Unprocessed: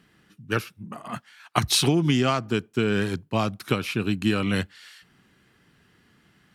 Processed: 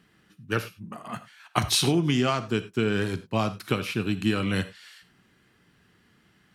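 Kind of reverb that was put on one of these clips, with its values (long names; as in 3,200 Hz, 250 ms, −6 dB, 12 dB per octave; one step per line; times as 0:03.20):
reverb whose tail is shaped and stops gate 120 ms flat, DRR 11 dB
level −2 dB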